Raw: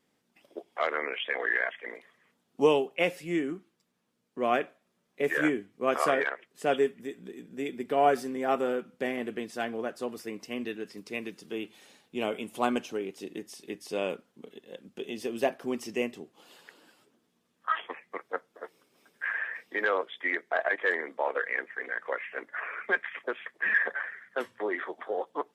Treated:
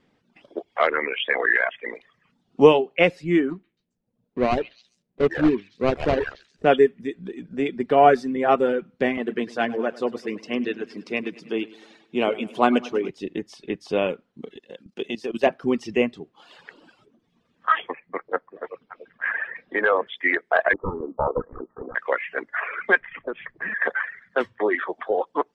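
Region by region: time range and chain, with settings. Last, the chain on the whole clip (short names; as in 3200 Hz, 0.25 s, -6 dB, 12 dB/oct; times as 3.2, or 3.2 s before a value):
3.5–6.66 median filter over 41 samples + delay with a stepping band-pass 0.135 s, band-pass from 2800 Hz, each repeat 0.7 oct, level -5.5 dB
9.17–13.1 HPF 180 Hz + feedback echo 0.102 s, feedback 56%, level -9.5 dB
14.56–15.47 HPF 150 Hz + high shelf 3000 Hz +7 dB + level quantiser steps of 12 dB
17.9–20.07 air absorption 280 m + delay with a stepping band-pass 0.191 s, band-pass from 160 Hz, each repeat 1.4 oct, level -6 dB
20.73–21.95 self-modulated delay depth 0.43 ms + rippled Chebyshev low-pass 1300 Hz, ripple 3 dB + low shelf 210 Hz +10.5 dB
23–23.82 RIAA curve playback + compressor 2.5:1, threshold -38 dBFS
whole clip: reverb removal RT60 0.79 s; LPF 3800 Hz 12 dB/oct; low shelf 110 Hz +11.5 dB; gain +9 dB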